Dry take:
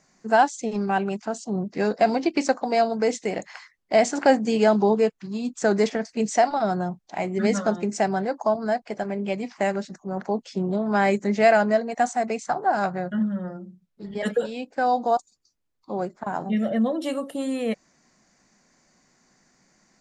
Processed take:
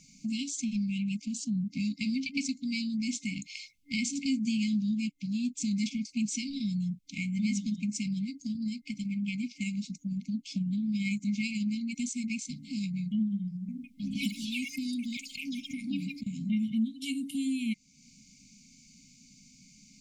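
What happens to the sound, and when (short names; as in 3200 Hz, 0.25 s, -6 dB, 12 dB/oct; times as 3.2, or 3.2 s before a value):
7.68–11.76 tremolo 18 Hz, depth 30%
13.53–16.9 echoes that change speed 0.155 s, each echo +5 st, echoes 3
whole clip: FFT band-reject 280–2100 Hz; compressor 2:1, threshold -45 dBFS; gain +7.5 dB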